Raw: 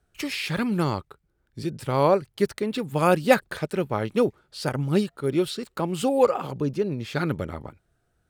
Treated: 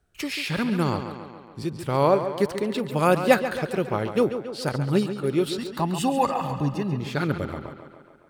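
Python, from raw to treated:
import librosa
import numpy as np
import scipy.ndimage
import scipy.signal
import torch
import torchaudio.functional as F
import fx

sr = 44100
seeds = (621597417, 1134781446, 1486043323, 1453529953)

y = fx.comb(x, sr, ms=1.1, depth=0.78, at=(5.58, 7.0))
y = fx.echo_tape(y, sr, ms=139, feedback_pct=65, wet_db=-8.5, lp_hz=5700.0, drive_db=8.0, wow_cents=29)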